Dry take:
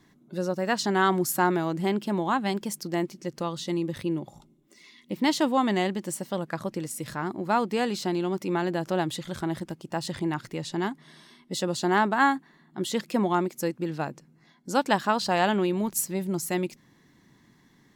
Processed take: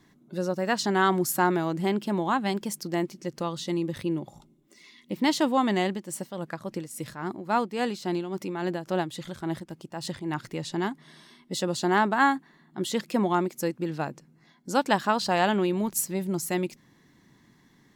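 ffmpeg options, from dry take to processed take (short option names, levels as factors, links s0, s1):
-filter_complex "[0:a]asettb=1/sr,asplit=3[s0][s1][s2];[s0]atrim=end=5.914[s3];[s1]atrim=start=5.91:end=10.34,asetpts=PTS-STARTPTS,afade=t=in:d=0.004:c=qsin,afade=t=out:st=4.426:d=0.004:c=qsin,tremolo=f=3.6:d=0.59[s4];[s2]atrim=start=10.336[s5];[s3][s4]acrossfade=d=0.004:c1=hsin:c2=qsin[s6];[s6][s5]acrossfade=d=0.004:c1=qsin:c2=hsin"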